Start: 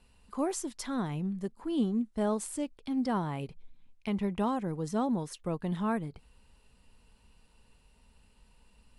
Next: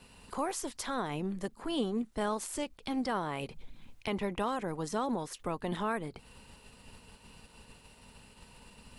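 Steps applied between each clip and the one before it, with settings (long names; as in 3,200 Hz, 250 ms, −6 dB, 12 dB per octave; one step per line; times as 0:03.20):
ceiling on every frequency bin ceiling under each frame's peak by 14 dB
downward compressor 1.5 to 1, threshold −48 dBFS, peak gain reduction 8.5 dB
level +5 dB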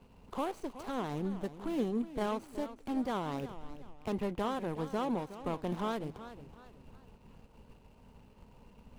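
running median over 25 samples
feedback echo with a swinging delay time 369 ms, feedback 36%, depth 119 cents, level −13.5 dB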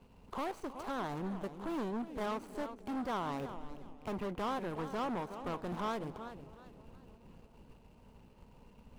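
feedback echo with a low-pass in the loop 316 ms, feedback 76%, low-pass 1,500 Hz, level −21.5 dB
gain into a clipping stage and back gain 34 dB
dynamic equaliser 1,100 Hz, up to +5 dB, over −51 dBFS, Q 0.85
level −1.5 dB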